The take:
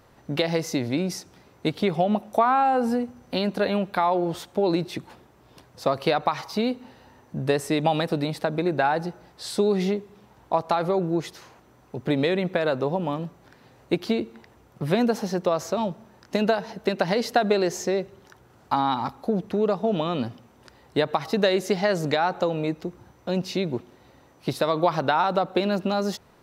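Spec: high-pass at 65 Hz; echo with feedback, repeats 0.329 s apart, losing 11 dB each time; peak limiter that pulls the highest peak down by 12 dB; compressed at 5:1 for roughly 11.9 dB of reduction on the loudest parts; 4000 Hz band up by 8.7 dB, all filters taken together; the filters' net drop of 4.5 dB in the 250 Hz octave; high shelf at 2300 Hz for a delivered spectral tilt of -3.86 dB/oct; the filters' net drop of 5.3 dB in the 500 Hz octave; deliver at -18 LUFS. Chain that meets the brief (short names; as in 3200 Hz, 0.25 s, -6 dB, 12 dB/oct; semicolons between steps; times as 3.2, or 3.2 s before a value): HPF 65 Hz; bell 250 Hz -4.5 dB; bell 500 Hz -6 dB; high shelf 2300 Hz +4 dB; bell 4000 Hz +6.5 dB; compressor 5:1, threshold -31 dBFS; limiter -26 dBFS; feedback echo 0.329 s, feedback 28%, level -11 dB; gain +19.5 dB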